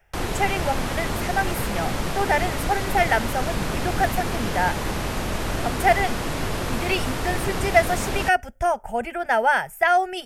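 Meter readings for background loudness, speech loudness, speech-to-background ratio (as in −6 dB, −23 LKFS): −27.5 LKFS, −24.5 LKFS, 3.0 dB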